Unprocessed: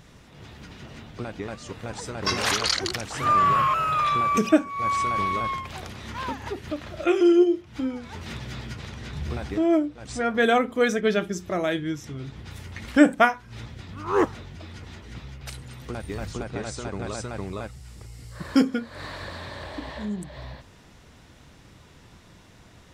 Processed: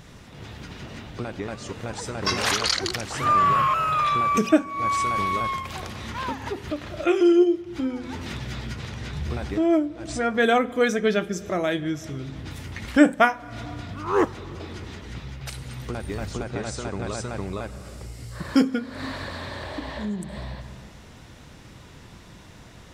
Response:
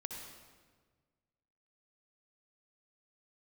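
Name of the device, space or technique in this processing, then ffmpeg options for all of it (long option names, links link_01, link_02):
ducked reverb: -filter_complex "[0:a]asettb=1/sr,asplit=3[link_01][link_02][link_03];[link_01]atrim=end=4.924[link_04];[link_02]atrim=start=4.92:end=5.76,asetpts=PTS-STARTPTS,afade=type=in:duration=0.004:curve=qsin,afade=type=out:start_time=0.836:duration=0.004:curve=qsin,highshelf=frequency=7300:gain=7[link_05];[link_03]atrim=start=5.756[link_06];[link_04][link_05]acrossfade=duration=0.004:curve1=hsin:curve2=qsin[link_07];[link_07][link_06]acrossfade=duration=0.004:curve1=qsin:curve2=hsin,asplit=3[link_08][link_09][link_10];[1:a]atrim=start_sample=2205[link_11];[link_09][link_11]afir=irnorm=-1:irlink=0[link_12];[link_10]apad=whole_len=1011555[link_13];[link_12][link_13]sidechaincompress=threshold=-39dB:ratio=10:attack=34:release=299,volume=0dB[link_14];[link_08][link_14]amix=inputs=2:normalize=0"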